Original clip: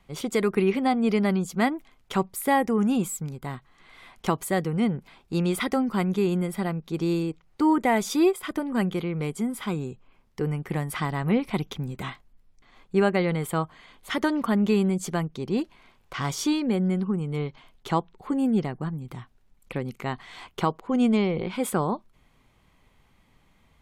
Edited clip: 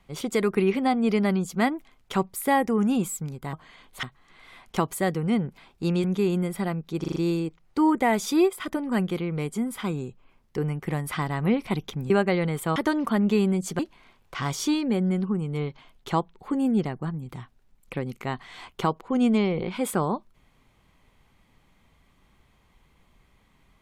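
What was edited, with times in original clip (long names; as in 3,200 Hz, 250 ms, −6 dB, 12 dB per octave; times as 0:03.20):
0:05.54–0:06.03: remove
0:06.99: stutter 0.04 s, 5 plays
0:11.93–0:12.97: remove
0:13.63–0:14.13: move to 0:03.53
0:15.16–0:15.58: remove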